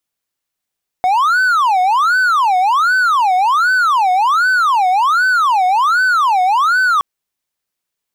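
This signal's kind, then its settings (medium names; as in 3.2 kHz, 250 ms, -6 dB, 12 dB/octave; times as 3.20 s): siren wail 729–1520 Hz 1.3 per s triangle -8 dBFS 5.97 s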